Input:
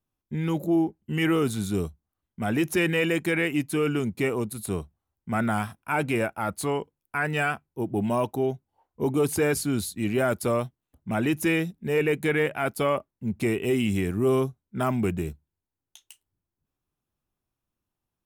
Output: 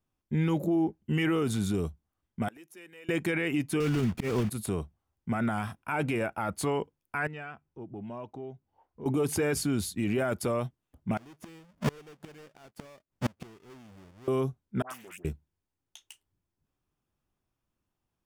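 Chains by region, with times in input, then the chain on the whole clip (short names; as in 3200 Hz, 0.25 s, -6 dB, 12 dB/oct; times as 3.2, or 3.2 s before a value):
2.48–3.09 HPF 270 Hz + high shelf 5700 Hz +11.5 dB + flipped gate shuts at -19 dBFS, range -28 dB
3.8–4.5 block floating point 3-bit + tone controls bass +8 dB, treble -3 dB + auto swell 0.205 s
7.27–9.06 compressor 2:1, threshold -53 dBFS + air absorption 130 m
11.17–14.28 half-waves squared off + flipped gate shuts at -21 dBFS, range -33 dB
14.82–15.25 differentiator + dispersion highs, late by 83 ms, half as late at 1100 Hz + Doppler distortion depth 0.33 ms
whole clip: high shelf 9100 Hz -9.5 dB; notch 4000 Hz, Q 15; limiter -22 dBFS; gain +2 dB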